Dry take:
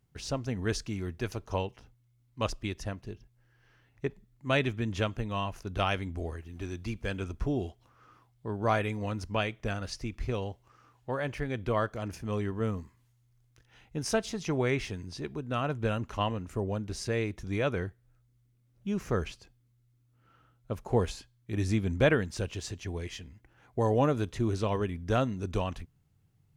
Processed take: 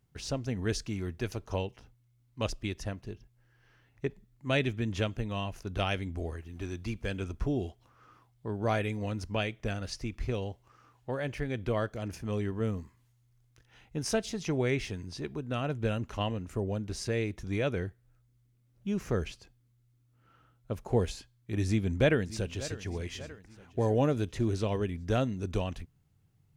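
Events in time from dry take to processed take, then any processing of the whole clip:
0:21.66–0:22.79: delay throw 590 ms, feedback 50%, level −16.5 dB
whole clip: dynamic equaliser 1,100 Hz, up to −7 dB, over −46 dBFS, Q 1.5

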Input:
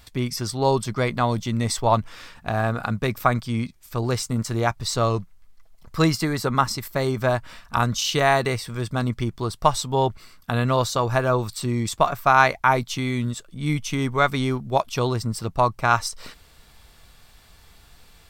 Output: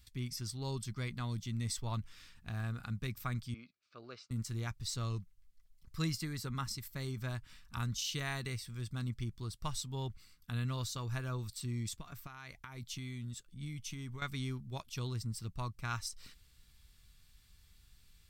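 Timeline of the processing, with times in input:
0:03.54–0:04.31: loudspeaker in its box 440–3,800 Hz, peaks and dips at 600 Hz +8 dB, 900 Hz −9 dB, 1,300 Hz +5 dB, 1,900 Hz −9 dB, 3,300 Hz −9 dB
0:11.87–0:14.22: downward compressor 20 to 1, threshold −23 dBFS
whole clip: guitar amp tone stack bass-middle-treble 6-0-2; level +2.5 dB

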